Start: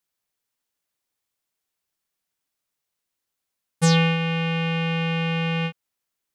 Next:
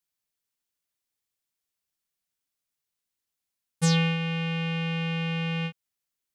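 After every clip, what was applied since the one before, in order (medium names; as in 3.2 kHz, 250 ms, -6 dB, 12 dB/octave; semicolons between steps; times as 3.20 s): peaking EQ 730 Hz -5 dB 3 oct; trim -3 dB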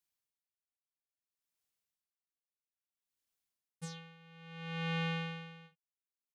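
doubling 33 ms -8.5 dB; logarithmic tremolo 0.6 Hz, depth 25 dB; trim -3 dB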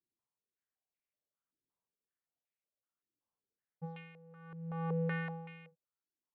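ten-band graphic EQ 125 Hz +7 dB, 250 Hz +4 dB, 500 Hz +4 dB; step-sequenced low-pass 5.3 Hz 330–2300 Hz; trim -5.5 dB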